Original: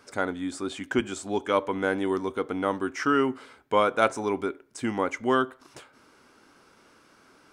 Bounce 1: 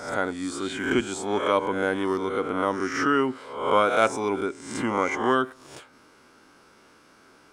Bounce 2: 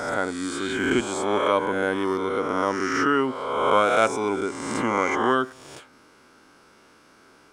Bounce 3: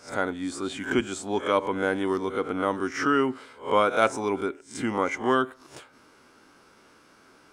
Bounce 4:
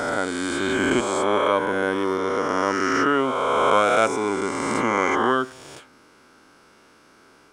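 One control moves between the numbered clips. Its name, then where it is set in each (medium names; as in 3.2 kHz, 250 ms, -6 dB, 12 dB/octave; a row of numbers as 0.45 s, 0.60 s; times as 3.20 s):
reverse spectral sustain, rising 60 dB in: 0.7 s, 1.48 s, 0.32 s, 3.12 s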